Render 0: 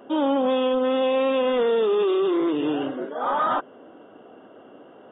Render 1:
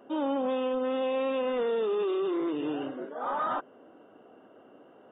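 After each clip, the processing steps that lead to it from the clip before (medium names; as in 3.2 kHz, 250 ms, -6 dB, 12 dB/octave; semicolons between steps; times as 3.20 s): band-stop 3.3 kHz, Q 11; trim -7.5 dB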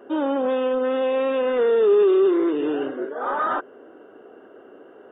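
fifteen-band graphic EQ 160 Hz -4 dB, 400 Hz +10 dB, 1.6 kHz +8 dB; trim +3 dB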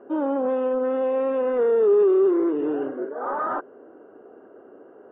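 low-pass 1.3 kHz 12 dB/octave; trim -1 dB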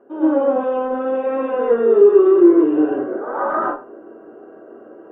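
reverberation RT60 0.35 s, pre-delay 101 ms, DRR -10.5 dB; trim -4.5 dB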